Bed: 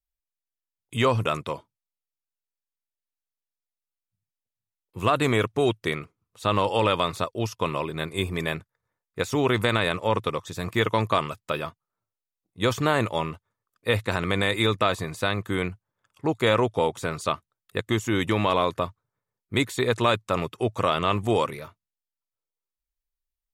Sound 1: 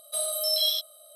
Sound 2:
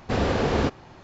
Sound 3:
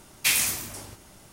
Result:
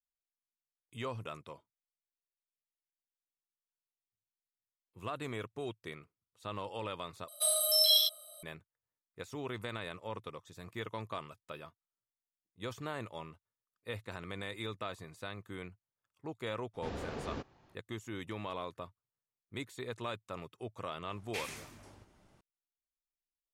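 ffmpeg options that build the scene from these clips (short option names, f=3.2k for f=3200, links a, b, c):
-filter_complex "[0:a]volume=-18dB[a];[1:a]highpass=f=550:p=1[b];[3:a]aemphasis=mode=reproduction:type=75fm[c];[a]asplit=2[d][e];[d]atrim=end=7.284[f];[b]atrim=end=1.15,asetpts=PTS-STARTPTS,volume=-0.5dB[g];[e]atrim=start=8.426[h];[2:a]atrim=end=1.03,asetpts=PTS-STARTPTS,volume=-18dB,afade=t=in:d=0.02,afade=t=out:st=1.01:d=0.02,adelay=16730[i];[c]atrim=end=1.32,asetpts=PTS-STARTPTS,volume=-13.5dB,afade=t=in:d=0.004:c=hsin,afade=t=out:st=1.316:d=0.004:c=hsin,adelay=21090[j];[f][g]acrossfade=d=0.004:c1=hsin:c2=hsin[k];[k][h]acrossfade=d=0.004:c1=hsin:c2=hsin[l];[l][i][j]amix=inputs=3:normalize=0"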